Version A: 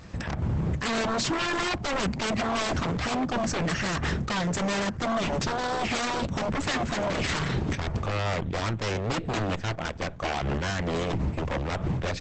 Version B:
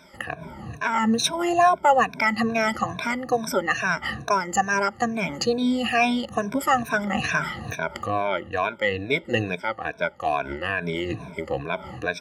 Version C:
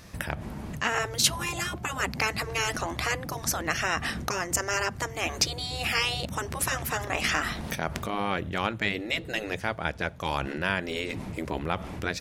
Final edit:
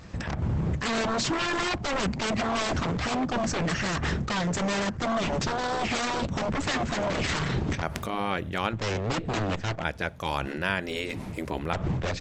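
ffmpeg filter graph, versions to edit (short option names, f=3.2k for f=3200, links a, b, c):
-filter_complex "[2:a]asplit=2[a][b];[0:a]asplit=3[c][d][e];[c]atrim=end=7.822[f];[a]atrim=start=7.818:end=8.732[g];[d]atrim=start=8.728:end=9.842[h];[b]atrim=start=9.838:end=11.732[i];[e]atrim=start=11.728[j];[f][g]acrossfade=d=0.004:c1=hsin:c2=hsin[k];[k][h]acrossfade=d=0.004:c1=hsin:c2=hsin[l];[l][i]acrossfade=d=0.004:c1=hsin:c2=hsin[m];[m][j]acrossfade=d=0.004:c1=hsin:c2=hsin"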